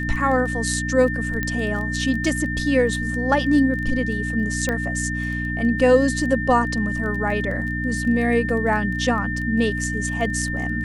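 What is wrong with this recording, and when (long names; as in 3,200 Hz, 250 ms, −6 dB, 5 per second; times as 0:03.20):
surface crackle 14 per second −29 dBFS
mains hum 60 Hz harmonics 5 −27 dBFS
whistle 1,800 Hz −27 dBFS
0:01.43: click −11 dBFS
0:04.69: click −10 dBFS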